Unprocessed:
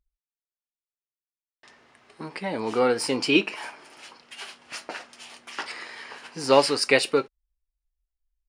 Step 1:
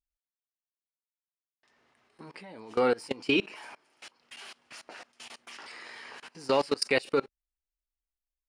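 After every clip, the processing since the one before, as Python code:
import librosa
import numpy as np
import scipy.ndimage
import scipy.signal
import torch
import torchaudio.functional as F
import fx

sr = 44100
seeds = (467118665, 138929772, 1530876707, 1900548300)

y = fx.level_steps(x, sr, step_db=23)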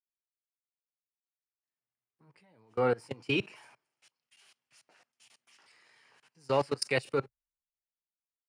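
y = fx.graphic_eq_10(x, sr, hz=(125, 250, 4000), db=(12, -4, -5))
y = fx.band_widen(y, sr, depth_pct=70)
y = y * librosa.db_to_amplitude(-6.5)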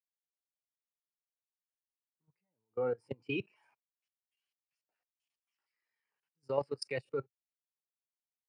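y = fx.level_steps(x, sr, step_db=12)
y = fx.spectral_expand(y, sr, expansion=1.5)
y = y * librosa.db_to_amplitude(3.0)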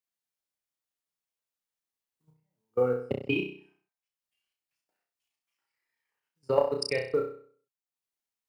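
y = fx.quant_float(x, sr, bits=6)
y = fx.transient(y, sr, attack_db=8, sustain_db=-7)
y = fx.room_flutter(y, sr, wall_m=5.5, rt60_s=0.49)
y = y * librosa.db_to_amplitude(1.5)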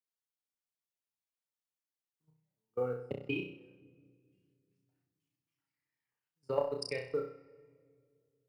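y = fx.room_shoebox(x, sr, seeds[0], volume_m3=3700.0, walls='mixed', distance_m=0.39)
y = y * librosa.db_to_amplitude(-8.0)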